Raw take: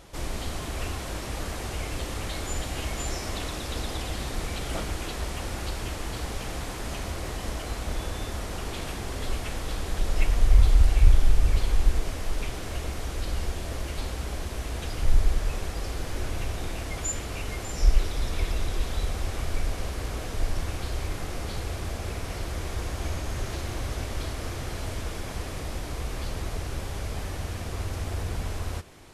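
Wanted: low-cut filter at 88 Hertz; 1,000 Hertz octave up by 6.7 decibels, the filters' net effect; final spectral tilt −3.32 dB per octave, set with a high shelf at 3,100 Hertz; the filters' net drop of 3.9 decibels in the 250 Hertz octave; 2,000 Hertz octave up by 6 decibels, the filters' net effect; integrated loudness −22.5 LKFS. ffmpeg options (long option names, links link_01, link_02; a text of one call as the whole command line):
ffmpeg -i in.wav -af "highpass=88,equalizer=frequency=250:width_type=o:gain=-6,equalizer=frequency=1000:width_type=o:gain=7.5,equalizer=frequency=2000:width_type=o:gain=3,highshelf=frequency=3100:gain=6.5,volume=9dB" out.wav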